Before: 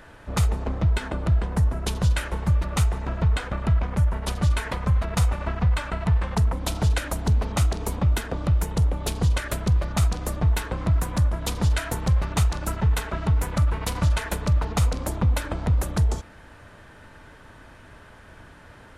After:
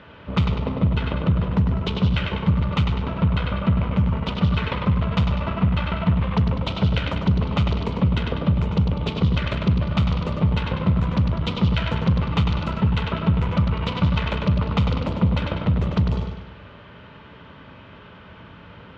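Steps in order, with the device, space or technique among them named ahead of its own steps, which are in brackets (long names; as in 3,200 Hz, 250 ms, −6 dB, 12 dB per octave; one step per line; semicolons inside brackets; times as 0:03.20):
analogue delay pedal into a guitar amplifier (bucket-brigade delay 99 ms, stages 4,096, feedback 49%, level −5 dB; tube saturation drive 17 dB, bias 0.45; loudspeaker in its box 84–3,600 Hz, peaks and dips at 180 Hz +5 dB, 320 Hz −5 dB, 740 Hz −8 dB, 1,700 Hz −9 dB, 3,000 Hz +4 dB)
level +6.5 dB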